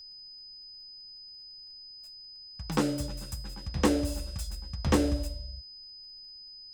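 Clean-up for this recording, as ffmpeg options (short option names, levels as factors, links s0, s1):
-af "adeclick=t=4,bandreject=f=5000:w=30,agate=range=0.0891:threshold=0.01"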